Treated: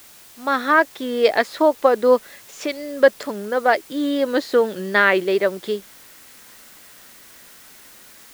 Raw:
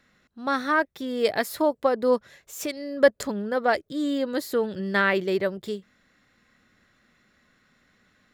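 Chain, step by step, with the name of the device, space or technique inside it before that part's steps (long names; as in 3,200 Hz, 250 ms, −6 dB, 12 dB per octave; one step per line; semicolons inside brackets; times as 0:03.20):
dictaphone (band-pass filter 290–4,300 Hz; automatic gain control gain up to 10.5 dB; tape wow and flutter; white noise bed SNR 25 dB)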